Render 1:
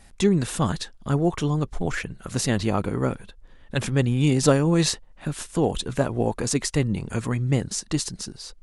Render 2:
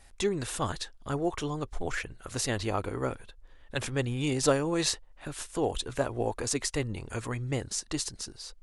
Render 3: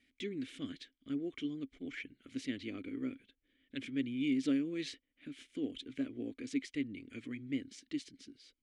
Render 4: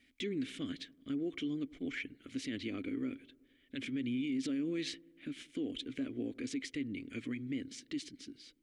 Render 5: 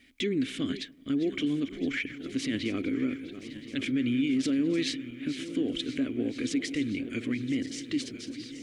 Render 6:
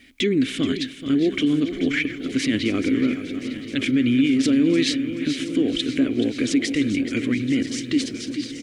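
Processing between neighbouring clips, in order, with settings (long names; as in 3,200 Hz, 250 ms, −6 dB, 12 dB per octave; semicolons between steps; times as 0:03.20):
parametric band 180 Hz −12.5 dB 0.96 octaves; level −4 dB
formant filter i; level +3.5 dB
brickwall limiter −34 dBFS, peak gain reduction 10.5 dB; delay with a low-pass on its return 95 ms, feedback 65%, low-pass 890 Hz, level −22 dB; level +4.5 dB
feedback delay that plays each chunk backwards 511 ms, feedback 76%, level −13.5 dB; level +8.5 dB
repeating echo 429 ms, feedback 33%, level −11.5 dB; level +8.5 dB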